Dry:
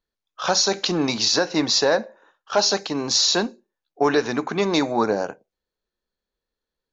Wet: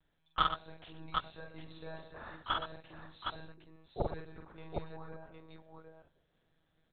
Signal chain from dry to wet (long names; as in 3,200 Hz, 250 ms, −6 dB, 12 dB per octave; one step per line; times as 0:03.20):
gate with flip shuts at −23 dBFS, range −36 dB
one-pitch LPC vocoder at 8 kHz 160 Hz
multi-tap delay 45/119/762 ms −3/−9.5/−4 dB
level +7 dB